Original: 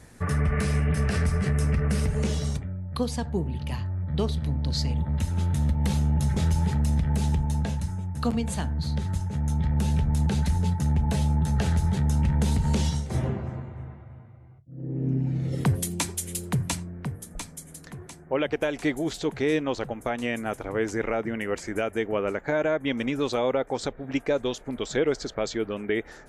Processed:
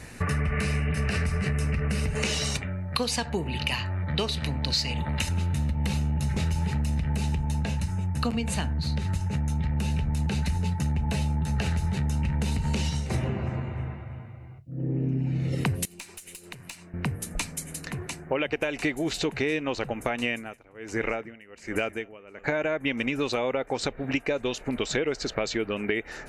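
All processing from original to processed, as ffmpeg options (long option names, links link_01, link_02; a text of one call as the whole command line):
ffmpeg -i in.wav -filter_complex "[0:a]asettb=1/sr,asplit=3[link_01][link_02][link_03];[link_01]atrim=end=2.154[link_04];[link_02]atrim=start=2.15:end=5.29,asetpts=PTS-STARTPTS,afade=type=in:duration=0.004:curve=qsin,afade=type=out:start_time=3.136:duration=0.004:curve=qsin,highshelf=frequency=4000:gain=11.5,asplit=2[link_05][link_06];[link_06]highpass=frequency=720:poles=1,volume=10dB,asoftclip=type=tanh:threshold=-10.5dB[link_07];[link_05][link_07]amix=inputs=2:normalize=0,lowpass=frequency=3300:poles=1,volume=-6dB[link_08];[link_03]atrim=start=5.286[link_09];[link_04][link_08]acrossfade=duration=0.004:curve1=hsin:curve2=qsin[link_10];[link_10][link_09]acrossfade=duration=0.004:curve1=qsin:curve2=hsin,asettb=1/sr,asplit=3[link_11][link_12][link_13];[link_11]atrim=end=15.854[link_14];[link_12]atrim=start=15.85:end=16.94,asetpts=PTS-STARTPTS,afade=type=in:duration=0.004:curve=qsin,afade=type=out:start_time=1.086:duration=0.004:curve=qsin,highpass=frequency=670:poles=1,acompressor=threshold=-43dB:ratio=5:attack=3.2:release=140:knee=1:detection=peak,aeval=exprs='(tanh(35.5*val(0)+0.8)-tanh(0.8))/35.5':channel_layout=same[link_15];[link_13]atrim=start=16.936[link_16];[link_14][link_15]acrossfade=duration=0.004:curve1=hsin:curve2=qsin[link_17];[link_17][link_16]acrossfade=duration=0.004:curve1=qsin:curve2=hsin,asettb=1/sr,asplit=3[link_18][link_19][link_20];[link_18]atrim=end=20.304[link_21];[link_19]atrim=start=20.3:end=22.44,asetpts=PTS-STARTPTS,afade=type=in:duration=0.004:curve=qsin,afade=type=out:start_time=2.136:duration=0.004:curve=qsin,aecho=1:1:214:0.119,atrim=end_sample=94374,aeval=exprs='val(0)*pow(10,-29*(0.5-0.5*cos(2*PI*1.3*n/s))/20)':channel_layout=same[link_22];[link_20]atrim=start=22.436[link_23];[link_21][link_22]acrossfade=duration=0.004:curve1=hsin:curve2=qsin[link_24];[link_24][link_23]acrossfade=duration=0.004:curve1=qsin:curve2=hsin,equalizer=frequency=2800:width=1.4:gain=10.5,bandreject=frequency=3300:width=5.3,acompressor=threshold=-31dB:ratio=4,volume=6dB" out.wav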